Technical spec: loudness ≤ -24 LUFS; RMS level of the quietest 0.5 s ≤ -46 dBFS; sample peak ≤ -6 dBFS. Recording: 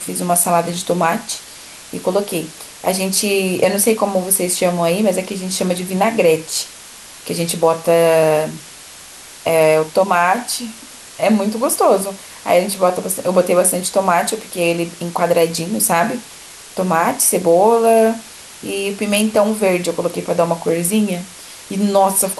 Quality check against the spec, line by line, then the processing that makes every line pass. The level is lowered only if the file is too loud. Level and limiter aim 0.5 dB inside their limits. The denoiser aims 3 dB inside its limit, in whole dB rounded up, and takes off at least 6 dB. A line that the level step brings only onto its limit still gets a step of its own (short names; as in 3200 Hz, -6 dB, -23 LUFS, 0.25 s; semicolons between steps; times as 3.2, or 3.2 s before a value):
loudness -16.5 LUFS: fail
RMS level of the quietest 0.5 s -38 dBFS: fail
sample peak -2.0 dBFS: fail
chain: denoiser 6 dB, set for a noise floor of -38 dBFS; gain -8 dB